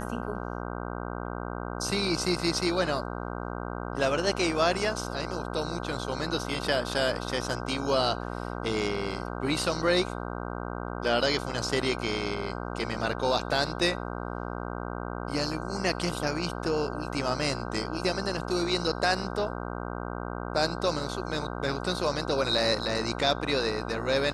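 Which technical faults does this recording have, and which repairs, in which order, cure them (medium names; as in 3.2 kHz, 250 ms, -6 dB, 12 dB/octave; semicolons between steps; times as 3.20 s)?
buzz 60 Hz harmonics 26 -35 dBFS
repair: de-hum 60 Hz, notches 26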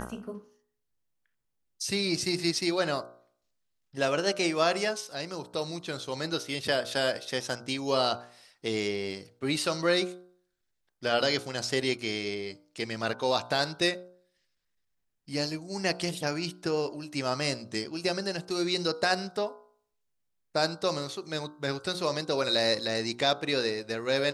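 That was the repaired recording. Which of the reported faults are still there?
nothing left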